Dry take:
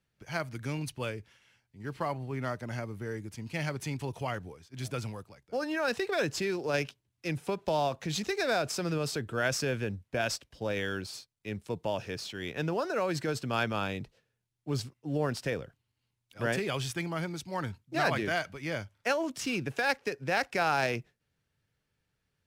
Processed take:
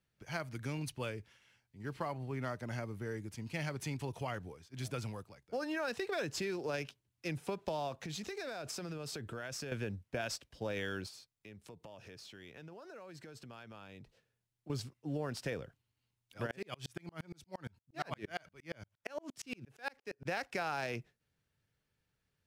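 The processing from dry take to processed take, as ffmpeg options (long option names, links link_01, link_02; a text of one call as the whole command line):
ffmpeg -i in.wav -filter_complex "[0:a]asettb=1/sr,asplit=3[link_01][link_02][link_03];[link_01]atrim=end=8.024[link_04];[link_02]atrim=start=8.02:end=9.72,asetpts=PTS-STARTPTS,afade=type=in:duration=0.004:curve=qsin,afade=type=out:start_time=1.696:duration=0.004:curve=qsin,acompressor=threshold=-35dB:ratio=10:attack=3.2:release=140:knee=1:detection=peak[link_05];[link_03]atrim=start=9.716[link_06];[link_04][link_05]acrossfade=duration=0.004:curve1=hsin:curve2=qsin[link_07];[link_07][link_06]acrossfade=duration=0.004:curve1=qsin:curve2=hsin,asettb=1/sr,asplit=3[link_08][link_09][link_10];[link_08]atrim=end=11.084[link_11];[link_09]atrim=start=11.08:end=14.7,asetpts=PTS-STARTPTS,afade=type=in:duration=0.004:curve=qsin,afade=type=out:start_time=3.616:duration=0.004:curve=qsin,acompressor=threshold=-47dB:ratio=5:attack=3.2:release=140:knee=1:detection=peak[link_12];[link_10]atrim=start=14.696[link_13];[link_11][link_12]acrossfade=duration=0.004:curve1=hsin:curve2=qsin[link_14];[link_14][link_13]acrossfade=duration=0.004:curve1=qsin:curve2=hsin,asplit=3[link_15][link_16][link_17];[link_15]afade=type=out:start_time=16.46:duration=0.02[link_18];[link_16]aeval=exprs='val(0)*pow(10,-37*if(lt(mod(-8.6*n/s,1),2*abs(-8.6)/1000),1-mod(-8.6*n/s,1)/(2*abs(-8.6)/1000),(mod(-8.6*n/s,1)-2*abs(-8.6)/1000)/(1-2*abs(-8.6)/1000))/20)':channel_layout=same,afade=type=in:start_time=16.46:duration=0.02,afade=type=out:start_time=20.25:duration=0.02[link_19];[link_17]afade=type=in:start_time=20.25:duration=0.02[link_20];[link_18][link_19][link_20]amix=inputs=3:normalize=0,acompressor=threshold=-31dB:ratio=4,volume=-3dB" out.wav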